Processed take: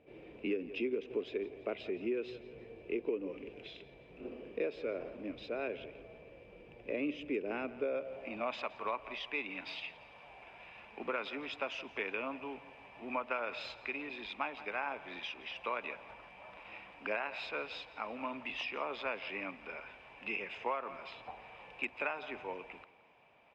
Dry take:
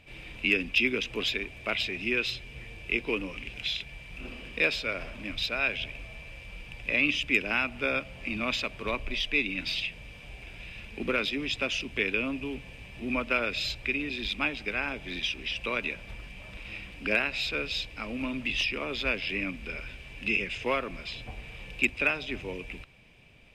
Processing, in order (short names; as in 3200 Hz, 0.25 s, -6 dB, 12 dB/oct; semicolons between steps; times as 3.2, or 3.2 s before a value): band-pass sweep 420 Hz -> 890 Hz, 7.72–8.65; on a send: feedback echo 0.17 s, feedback 45%, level -19 dB; on the sum: compressor 6:1, threshold -37 dBFS, peak gain reduction 8.5 dB; gain +5.5 dB